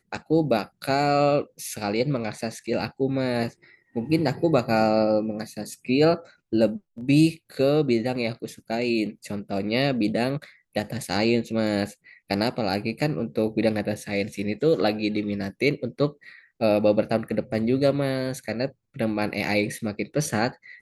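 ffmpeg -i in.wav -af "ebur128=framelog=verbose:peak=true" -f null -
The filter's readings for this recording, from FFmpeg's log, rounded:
Integrated loudness:
  I:         -24.9 LUFS
  Threshold: -35.1 LUFS
Loudness range:
  LRA:         2.9 LU
  Threshold: -45.1 LUFS
  LRA low:   -26.4 LUFS
  LRA high:  -23.5 LUFS
True peak:
  Peak:       -6.2 dBFS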